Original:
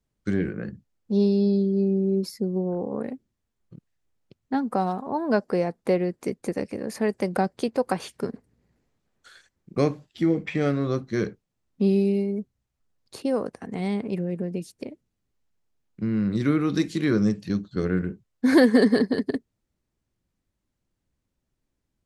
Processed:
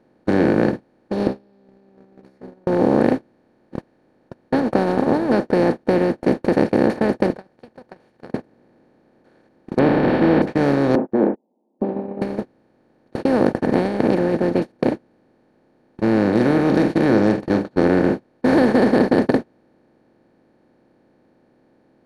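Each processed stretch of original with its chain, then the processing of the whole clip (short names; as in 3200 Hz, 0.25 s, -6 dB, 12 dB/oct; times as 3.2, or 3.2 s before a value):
1.27–2.67 compressor, threshold -33 dBFS + metallic resonator 63 Hz, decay 0.37 s, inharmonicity 0.002
7.3–8.32 passive tone stack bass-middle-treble 10-0-10 + compressor 1.5:1, threshold -54 dBFS
9.79–10.42 delta modulation 16 kbps, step -25.5 dBFS + bell 260 Hz +4 dB 1.9 oct
10.95–12.22 Chebyshev band-pass 210–930 Hz, order 5 + gate -46 dBFS, range -37 dB
whole clip: per-bin compression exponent 0.2; high shelf 2700 Hz -10 dB; gate -14 dBFS, range -32 dB; gain -2.5 dB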